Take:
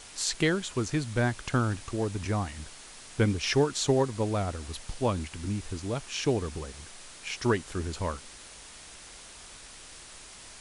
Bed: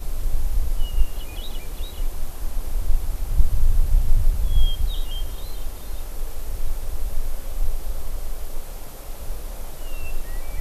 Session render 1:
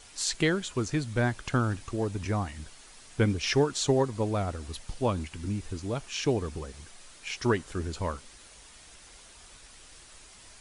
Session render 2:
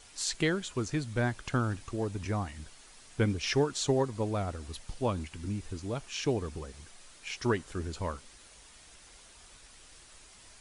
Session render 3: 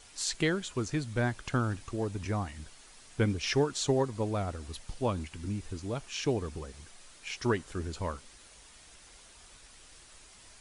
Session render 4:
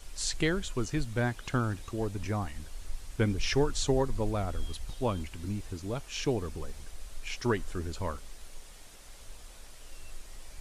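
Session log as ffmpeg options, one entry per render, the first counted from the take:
ffmpeg -i in.wav -af "afftdn=noise_reduction=6:noise_floor=-48" out.wav
ffmpeg -i in.wav -af "volume=-3dB" out.wav
ffmpeg -i in.wav -af anull out.wav
ffmpeg -i in.wav -i bed.wav -filter_complex "[1:a]volume=-18.5dB[link_01];[0:a][link_01]amix=inputs=2:normalize=0" out.wav

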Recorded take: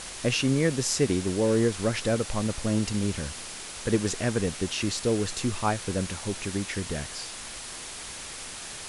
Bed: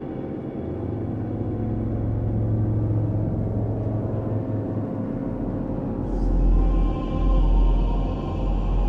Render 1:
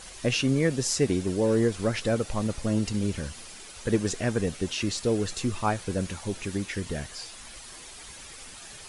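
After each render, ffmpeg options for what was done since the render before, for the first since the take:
ffmpeg -i in.wav -af "afftdn=noise_reduction=9:noise_floor=-40" out.wav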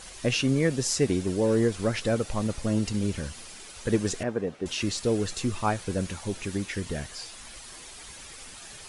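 ffmpeg -i in.wav -filter_complex "[0:a]asettb=1/sr,asplit=3[link_01][link_02][link_03];[link_01]atrim=end=4.234[link_04];[link_02]atrim=start=4.23:end=4.66,asetpts=PTS-STARTPTS,afade=type=in:duration=0.004:curve=qsin,afade=type=out:start_time=0.426:duration=0.004:curve=qsin,bandpass=frequency=560:width_type=q:width=0.58[link_05];[link_03]atrim=start=4.656[link_06];[link_04][link_05]acrossfade=duration=0.004:curve1=hsin:curve2=qsin[link_07];[link_07][link_06]acrossfade=duration=0.004:curve1=qsin:curve2=hsin" out.wav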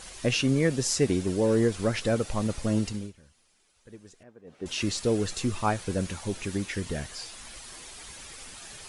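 ffmpeg -i in.wav -filter_complex "[0:a]asplit=3[link_01][link_02][link_03];[link_01]atrim=end=3.13,asetpts=PTS-STARTPTS,afade=type=out:start_time=2.79:duration=0.34:silence=0.0707946[link_04];[link_02]atrim=start=3.13:end=4.44,asetpts=PTS-STARTPTS,volume=-23dB[link_05];[link_03]atrim=start=4.44,asetpts=PTS-STARTPTS,afade=type=in:duration=0.34:silence=0.0707946[link_06];[link_04][link_05][link_06]concat=n=3:v=0:a=1" out.wav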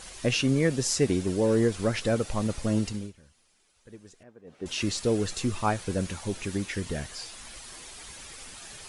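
ffmpeg -i in.wav -af anull out.wav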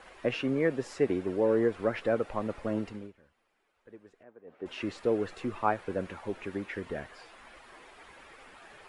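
ffmpeg -i in.wav -filter_complex "[0:a]acrossover=split=280 2400:gain=0.224 1 0.0708[link_01][link_02][link_03];[link_01][link_02][link_03]amix=inputs=3:normalize=0,bandreject=frequency=6100:width=28" out.wav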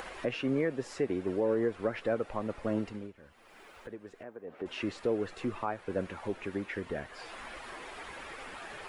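ffmpeg -i in.wav -af "acompressor=mode=upward:threshold=-35dB:ratio=2.5,alimiter=limit=-20dB:level=0:latency=1:release=278" out.wav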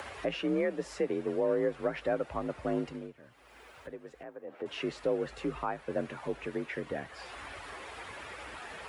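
ffmpeg -i in.wav -af "afreqshift=45" out.wav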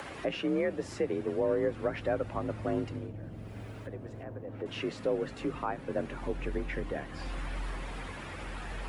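ffmpeg -i in.wav -i bed.wav -filter_complex "[1:a]volume=-19dB[link_01];[0:a][link_01]amix=inputs=2:normalize=0" out.wav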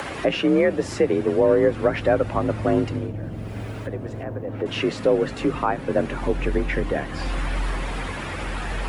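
ffmpeg -i in.wav -af "volume=11.5dB" out.wav

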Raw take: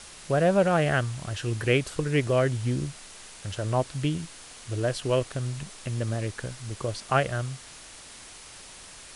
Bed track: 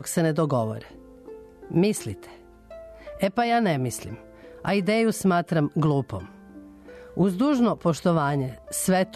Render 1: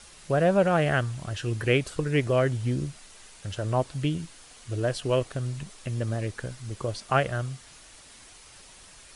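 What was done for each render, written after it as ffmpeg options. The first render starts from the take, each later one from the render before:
ffmpeg -i in.wav -af "afftdn=noise_reduction=6:noise_floor=-46" out.wav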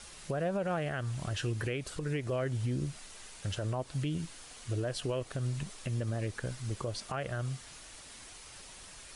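ffmpeg -i in.wav -af "acompressor=threshold=-30dB:ratio=2,alimiter=level_in=1dB:limit=-24dB:level=0:latency=1:release=96,volume=-1dB" out.wav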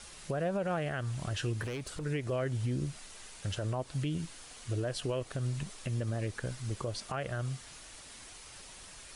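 ffmpeg -i in.wav -filter_complex "[0:a]asettb=1/sr,asplit=3[link_01][link_02][link_03];[link_01]atrim=end=1.624[link_04];[link_02]atrim=start=1.62:end=2.04,asetpts=PTS-STARTPTS,afade=type=in:duration=0.004:curve=qsin,afade=type=out:start_time=0.416:duration=0.004:curve=qsin,asoftclip=type=hard:threshold=-34dB[link_05];[link_03]atrim=start=2.036[link_06];[link_04][link_05]acrossfade=duration=0.004:curve1=hsin:curve2=qsin[link_07];[link_07][link_06]acrossfade=duration=0.004:curve1=qsin:curve2=hsin" out.wav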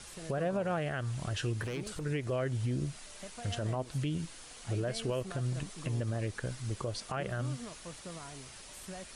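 ffmpeg -i in.wav -i bed.wav -filter_complex "[1:a]volume=-24.5dB[link_01];[0:a][link_01]amix=inputs=2:normalize=0" out.wav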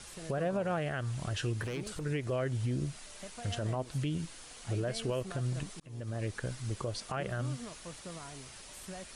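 ffmpeg -i in.wav -filter_complex "[0:a]asplit=2[link_01][link_02];[link_01]atrim=end=5.8,asetpts=PTS-STARTPTS,afade=type=out:start_time=5.796:duration=0.004:curve=hsin[link_03];[link_02]atrim=start=5.8,asetpts=PTS-STARTPTS,afade=type=in:duration=0.47[link_04];[link_03][link_04]concat=n=2:v=0:a=1" out.wav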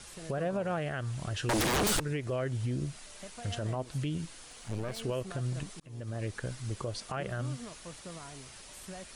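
ffmpeg -i in.wav -filter_complex "[0:a]asettb=1/sr,asplit=3[link_01][link_02][link_03];[link_01]atrim=end=1.494[link_04];[link_02]atrim=start=1.49:end=2,asetpts=PTS-STARTPTS,afade=type=in:duration=0.004:curve=qsin,afade=type=out:start_time=0.506:duration=0.004:curve=qsin,aeval=exprs='0.0596*sin(PI/2*7.08*val(0)/0.0596)':channel_layout=same[link_05];[link_03]atrim=start=1.996[link_06];[link_04][link_05]acrossfade=duration=0.004:curve1=hsin:curve2=qsin[link_07];[link_07][link_06]acrossfade=duration=0.004:curve1=qsin:curve2=hsin,asettb=1/sr,asplit=3[link_08][link_09][link_10];[link_08]atrim=end=4.484[link_11];[link_09]atrim=start=4.48:end=5.01,asetpts=PTS-STARTPTS,afade=type=in:duration=0.004:curve=qsin,afade=type=out:start_time=0.526:duration=0.004:curve=qsin,aeval=exprs='clip(val(0),-1,0.00708)':channel_layout=same[link_12];[link_10]atrim=start=5.006[link_13];[link_11][link_12]acrossfade=duration=0.004:curve1=hsin:curve2=qsin[link_14];[link_14][link_13]acrossfade=duration=0.004:curve1=qsin:curve2=hsin" out.wav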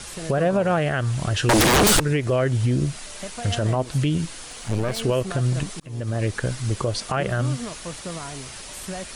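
ffmpeg -i in.wav -af "volume=12dB" out.wav

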